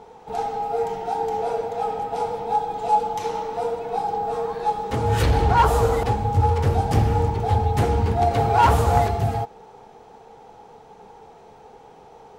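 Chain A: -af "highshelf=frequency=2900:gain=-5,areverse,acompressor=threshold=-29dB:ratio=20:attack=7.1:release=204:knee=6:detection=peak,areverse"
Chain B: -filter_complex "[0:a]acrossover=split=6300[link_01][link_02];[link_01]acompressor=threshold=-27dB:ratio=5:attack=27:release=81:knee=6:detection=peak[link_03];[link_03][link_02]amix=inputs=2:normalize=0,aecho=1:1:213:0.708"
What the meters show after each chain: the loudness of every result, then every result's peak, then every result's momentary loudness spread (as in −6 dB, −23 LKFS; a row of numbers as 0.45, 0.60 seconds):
−34.0, −26.5 LKFS; −21.0, −13.0 dBFS; 14, 20 LU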